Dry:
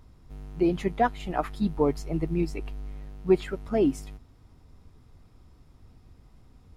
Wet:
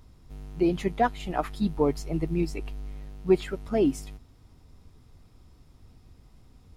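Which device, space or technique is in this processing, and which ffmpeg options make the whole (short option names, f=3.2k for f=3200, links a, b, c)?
exciter from parts: -filter_complex "[0:a]asplit=2[a][b];[b]highpass=2.1k,asoftclip=type=tanh:threshold=-40dB,volume=-5.5dB[c];[a][c]amix=inputs=2:normalize=0"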